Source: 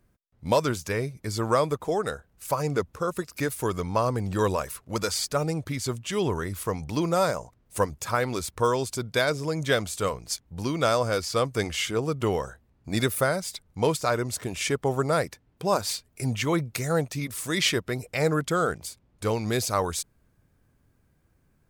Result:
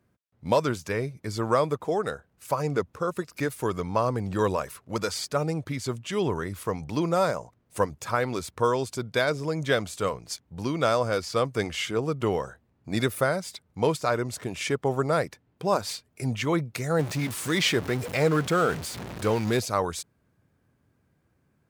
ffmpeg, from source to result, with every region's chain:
-filter_complex "[0:a]asettb=1/sr,asplit=3[s0][s1][s2];[s0]atrim=end=16.994[s3];[s1]atrim=start=16.99:end=19.6,asetpts=PTS-STARTPTS,afade=t=in:d=0.004:c=qsin,afade=t=out:st=2.606:d=0.004:c=qsin,aeval=exprs='val(0)+0.5*0.0376*sgn(val(0))':c=same,highpass=52[s4];[s2]atrim=start=19.596[s5];[s3][s4]acrossfade=d=0.004:c1=hsin:c2=qsin[s6];[s6][s5]acrossfade=d=0.004:c1=qsin:c2=hsin,highpass=92,highshelf=f=5200:g=-7.5"

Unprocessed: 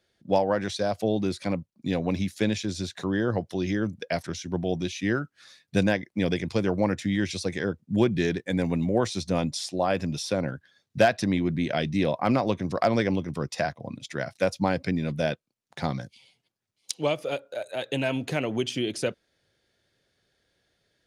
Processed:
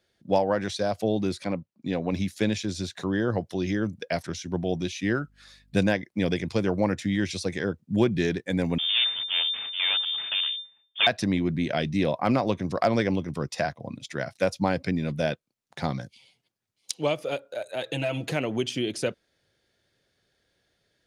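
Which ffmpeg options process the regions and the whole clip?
-filter_complex "[0:a]asettb=1/sr,asplit=3[s0][s1][s2];[s0]atrim=end=1.444[s3];[s1]atrim=start=1.44:end=2.13,asetpts=PTS-STARTPTS,afade=t=in:d=0.004:c=qsin,afade=t=out:st=0.686:d=0.004:c=qsin,lowpass=f=3300:p=1,lowshelf=f=93:g=-10[s4];[s2]atrim=start=2.126[s5];[s3][s4]acrossfade=d=0.004:c1=hsin:c2=qsin[s6];[s6][s5]acrossfade=d=0.004:c1=qsin:c2=hsin,asettb=1/sr,asplit=3[s7][s8][s9];[s7]atrim=end=5.044[s10];[s8]atrim=start=5.04:end=5.79,asetpts=PTS-STARTPTS,afade=t=in:d=0.004:c=qsin,afade=t=out:st=0.746:d=0.004:c=qsin,aeval=exprs='val(0)+0.001*(sin(2*PI*50*n/s)+sin(2*PI*2*50*n/s)/2+sin(2*PI*3*50*n/s)/3+sin(2*PI*4*50*n/s)/4+sin(2*PI*5*50*n/s)/5)':c=same,bandreject=f=5900:w=15[s11];[s9]atrim=start=5.786[s12];[s10][s11]acrossfade=d=0.004:c1=hsin:c2=qsin[s13];[s13][s12]acrossfade=d=0.004:c1=qsin:c2=hsin,asettb=1/sr,asplit=3[s14][s15][s16];[s14]atrim=end=8.784[s17];[s15]atrim=start=8.78:end=11.07,asetpts=PTS-STARTPTS,afade=t=in:d=0.004:c=qsin,afade=t=out:st=2.286:d=0.004:c=qsin,asuperstop=centerf=1500:order=8:qfactor=3.7,aeval=exprs='abs(val(0))':c=same,lowpass=f=3100:t=q:w=0.5098,lowpass=f=3100:t=q:w=0.6013,lowpass=f=3100:t=q:w=0.9,lowpass=f=3100:t=q:w=2.563,afreqshift=-3600[s18];[s16]atrim=start=11.066[s19];[s17][s18]acrossfade=d=0.004:c1=hsin:c2=qsin[s20];[s20][s19]acrossfade=d=0.004:c1=qsin:c2=hsin,asettb=1/sr,asplit=3[s21][s22][s23];[s21]atrim=end=17.834[s24];[s22]atrim=start=17.83:end=18.32,asetpts=PTS-STARTPTS,afade=t=in:d=0.004:c=qsin,afade=t=out:st=0.486:d=0.004:c=qsin,aecho=1:1:6.1:0.99,atrim=end_sample=21609,acompressor=threshold=0.0447:ratio=2:attack=3.2:release=140:knee=1:detection=peak[s25];[s23]atrim=start=18.316[s26];[s24][s25]acrossfade=d=0.004:c1=hsin:c2=qsin[s27];[s27][s26]acrossfade=d=0.004:c1=qsin:c2=hsin"

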